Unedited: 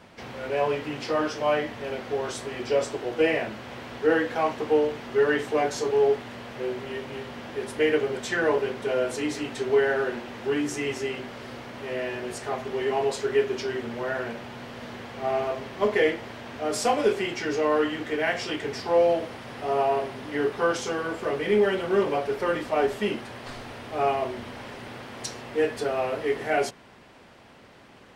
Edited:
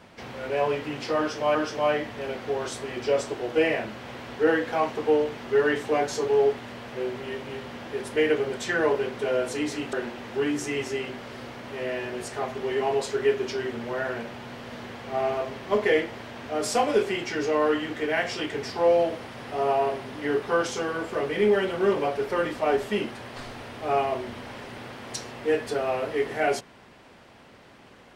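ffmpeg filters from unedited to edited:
ffmpeg -i in.wav -filter_complex "[0:a]asplit=3[link_01][link_02][link_03];[link_01]atrim=end=1.552[link_04];[link_02]atrim=start=1.178:end=9.562[link_05];[link_03]atrim=start=10.028[link_06];[link_04][link_05]acrossfade=duration=0.004:curve1=hsin:curve2=hsin[link_07];[link_07][link_06]acrossfade=duration=0.004:curve1=hsin:curve2=hsin" out.wav

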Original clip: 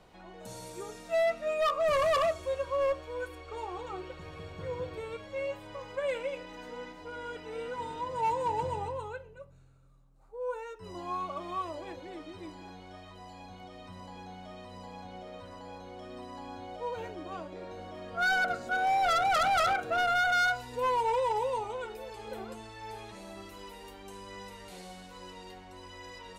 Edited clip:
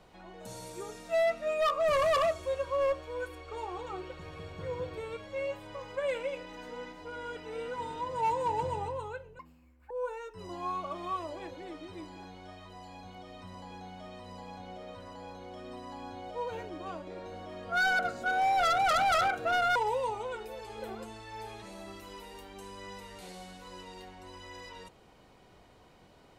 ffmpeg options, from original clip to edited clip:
ffmpeg -i in.wav -filter_complex "[0:a]asplit=4[link_01][link_02][link_03][link_04];[link_01]atrim=end=9.394[link_05];[link_02]atrim=start=9.39:end=10.36,asetpts=PTS-STARTPTS,asetrate=82908,aresample=44100[link_06];[link_03]atrim=start=10.356:end=20.212[link_07];[link_04]atrim=start=21.248[link_08];[link_05][link_06]acrossfade=duration=0.004:curve1=hsin:curve2=hsin[link_09];[link_09][link_07]acrossfade=duration=0.004:curve1=hsin:curve2=hsin[link_10];[link_10][link_08]acrossfade=duration=0.004:curve1=hsin:curve2=hsin" out.wav

